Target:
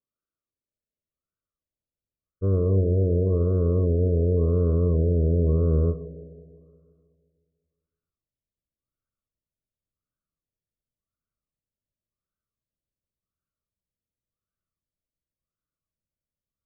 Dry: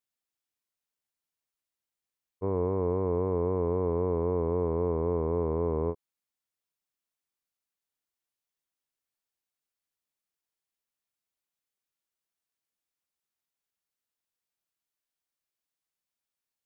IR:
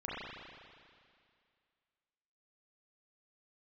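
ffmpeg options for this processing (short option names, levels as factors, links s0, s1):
-filter_complex "[0:a]asuperstop=centerf=850:order=20:qfactor=2,asubboost=boost=4:cutoff=170,asplit=2[s0][s1];[1:a]atrim=start_sample=2205[s2];[s1][s2]afir=irnorm=-1:irlink=0,volume=0.237[s3];[s0][s3]amix=inputs=2:normalize=0,afftfilt=real='re*lt(b*sr/1024,760*pow(1600/760,0.5+0.5*sin(2*PI*0.91*pts/sr)))':imag='im*lt(b*sr/1024,760*pow(1600/760,0.5+0.5*sin(2*PI*0.91*pts/sr)))':win_size=1024:overlap=0.75,volume=1.33"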